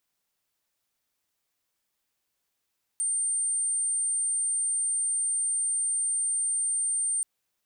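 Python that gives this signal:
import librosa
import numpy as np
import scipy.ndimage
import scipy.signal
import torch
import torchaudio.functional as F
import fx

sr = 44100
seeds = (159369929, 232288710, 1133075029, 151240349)

y = 10.0 ** (-24.5 / 20.0) * np.sin(2.0 * np.pi * (8880.0 * (np.arange(round(4.23 * sr)) / sr)))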